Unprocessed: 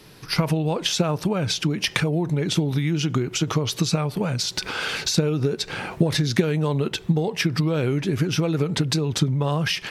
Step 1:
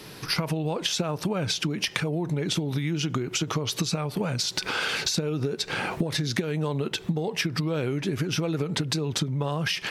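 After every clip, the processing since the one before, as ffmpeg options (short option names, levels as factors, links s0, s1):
-af "lowshelf=f=84:g=-9,acompressor=threshold=0.0282:ratio=4,volume=1.88"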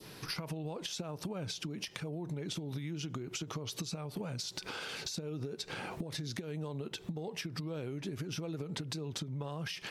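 -af "acompressor=threshold=0.0355:ratio=4,adynamicequalizer=threshold=0.00501:dfrequency=1800:dqfactor=0.78:tfrequency=1800:tqfactor=0.78:attack=5:release=100:ratio=0.375:range=2.5:mode=cutabove:tftype=bell,volume=0.447"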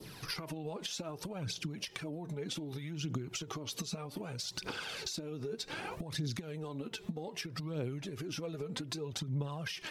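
-af "aphaser=in_gain=1:out_gain=1:delay=5:decay=0.51:speed=0.64:type=triangular,volume=0.891"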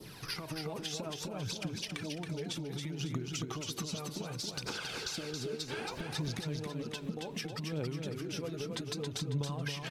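-af "aecho=1:1:274|548|822|1096|1370:0.596|0.25|0.105|0.0441|0.0185"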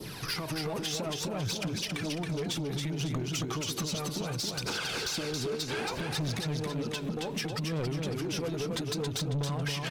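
-af "asoftclip=type=tanh:threshold=0.0158,volume=2.66"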